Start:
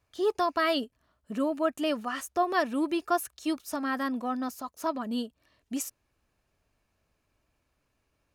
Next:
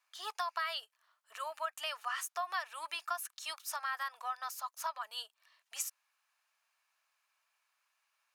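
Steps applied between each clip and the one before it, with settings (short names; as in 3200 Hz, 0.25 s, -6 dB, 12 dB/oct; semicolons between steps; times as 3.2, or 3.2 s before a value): inverse Chebyshev high-pass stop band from 270 Hz, stop band 60 dB; compressor 6:1, threshold -34 dBFS, peak gain reduction 10 dB; gain +1 dB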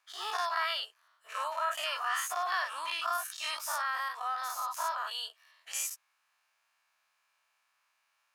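spectral dilation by 0.12 s; high shelf 6000 Hz -4.5 dB; wow and flutter 17 cents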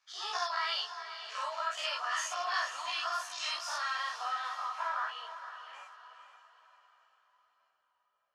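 low-pass sweep 5700 Hz -> 560 Hz, 3.5–6.96; diffused feedback echo 0.482 s, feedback 44%, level -10 dB; chorus voices 2, 0.98 Hz, delay 15 ms, depth 3 ms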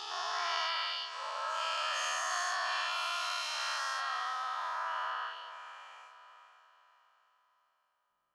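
spectral dilation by 0.48 s; gain -8 dB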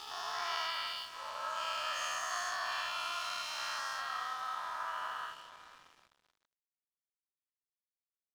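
on a send at -13 dB: reverb RT60 0.70 s, pre-delay 3 ms; on the sum: crossover distortion -50 dBFS; gain -2 dB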